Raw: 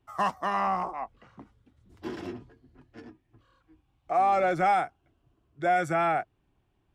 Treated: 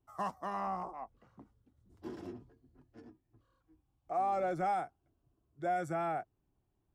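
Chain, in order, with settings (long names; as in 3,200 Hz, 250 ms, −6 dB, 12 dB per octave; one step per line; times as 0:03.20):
parametric band 2,500 Hz −9 dB 2 octaves
level −7 dB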